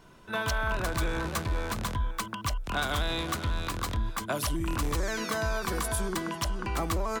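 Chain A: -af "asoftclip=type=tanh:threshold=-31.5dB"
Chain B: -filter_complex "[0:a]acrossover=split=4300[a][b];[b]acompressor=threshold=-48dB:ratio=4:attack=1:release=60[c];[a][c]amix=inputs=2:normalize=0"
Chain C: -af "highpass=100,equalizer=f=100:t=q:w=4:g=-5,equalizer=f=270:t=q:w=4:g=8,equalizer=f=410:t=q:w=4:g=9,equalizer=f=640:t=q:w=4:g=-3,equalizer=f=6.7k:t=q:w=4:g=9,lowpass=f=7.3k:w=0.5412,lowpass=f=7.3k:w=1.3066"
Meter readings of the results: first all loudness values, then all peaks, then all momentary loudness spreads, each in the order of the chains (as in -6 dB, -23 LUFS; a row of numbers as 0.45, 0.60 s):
-36.0, -32.0, -31.0 LUFS; -31.5, -19.5, -16.5 dBFS; 3, 4, 5 LU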